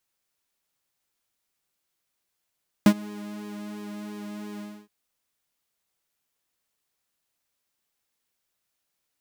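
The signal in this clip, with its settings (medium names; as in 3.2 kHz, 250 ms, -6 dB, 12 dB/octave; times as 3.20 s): synth patch with pulse-width modulation G#3, oscillator 2 triangle, interval +7 st, oscillator 2 level -4.5 dB, sub -27.5 dB, noise -18 dB, filter highpass, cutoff 110 Hz, Q 1.7, filter envelope 0.5 oct, attack 1.6 ms, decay 0.07 s, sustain -24 dB, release 0.28 s, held 1.74 s, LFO 2.9 Hz, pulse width 43%, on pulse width 14%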